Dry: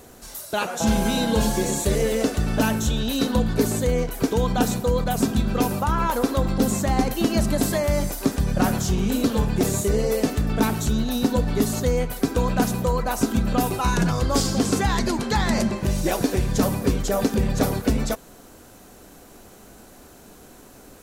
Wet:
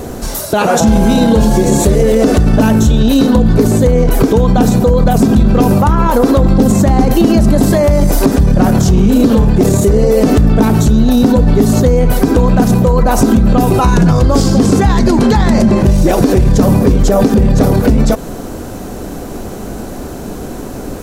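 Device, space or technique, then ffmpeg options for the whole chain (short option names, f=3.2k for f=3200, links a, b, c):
mastering chain: -af "equalizer=f=5.4k:t=o:w=0.77:g=2,acompressor=threshold=-22dB:ratio=3,tiltshelf=f=970:g=6,asoftclip=type=hard:threshold=-12.5dB,alimiter=level_in=20.5dB:limit=-1dB:release=50:level=0:latency=1,volume=-1dB"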